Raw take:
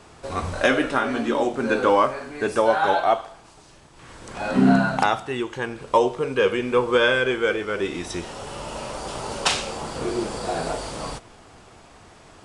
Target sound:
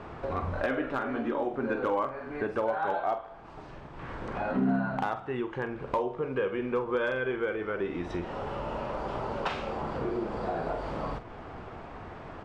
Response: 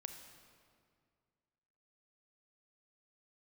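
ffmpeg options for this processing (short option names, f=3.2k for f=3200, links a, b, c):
-filter_complex "[0:a]lowpass=1.8k,acompressor=threshold=-41dB:ratio=2.5,asoftclip=type=hard:threshold=-26dB,asplit=2[a][b];[b]adelay=46,volume=-11.5dB[c];[a][c]amix=inputs=2:normalize=0,volume=6dB"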